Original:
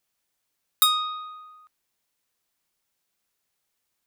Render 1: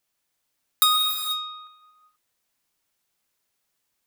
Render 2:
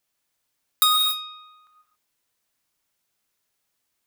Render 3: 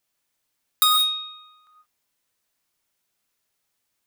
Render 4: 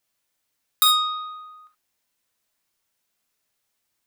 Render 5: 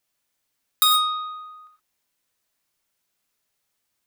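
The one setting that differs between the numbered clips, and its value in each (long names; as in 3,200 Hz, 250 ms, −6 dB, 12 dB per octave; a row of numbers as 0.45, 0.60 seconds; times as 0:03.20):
reverb whose tail is shaped and stops, gate: 510, 300, 200, 90, 140 milliseconds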